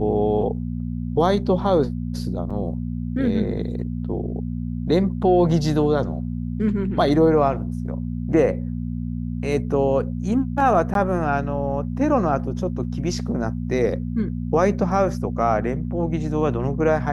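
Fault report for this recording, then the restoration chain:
hum 60 Hz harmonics 4 -27 dBFS
2.5 gap 5 ms
10.94–10.95 gap 12 ms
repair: de-hum 60 Hz, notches 4; interpolate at 2.5, 5 ms; interpolate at 10.94, 12 ms

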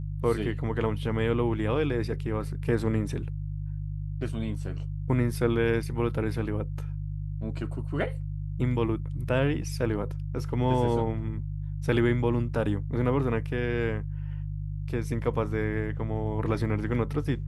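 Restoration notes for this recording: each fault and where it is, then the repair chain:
hum 50 Hz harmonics 3 -33 dBFS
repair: de-hum 50 Hz, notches 3

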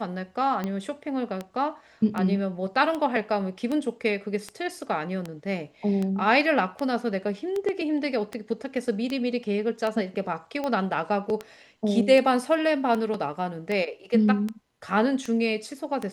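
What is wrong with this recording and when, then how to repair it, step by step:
tick 78 rpm -17 dBFS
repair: de-click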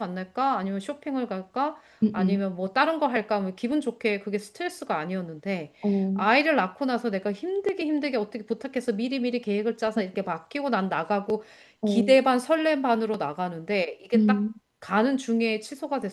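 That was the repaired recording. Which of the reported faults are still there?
none

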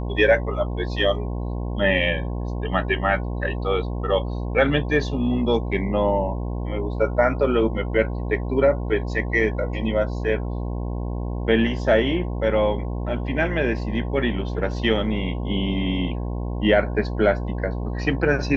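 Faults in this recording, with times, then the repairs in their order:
buzz 60 Hz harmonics 18 -27 dBFS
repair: de-hum 60 Hz, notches 18

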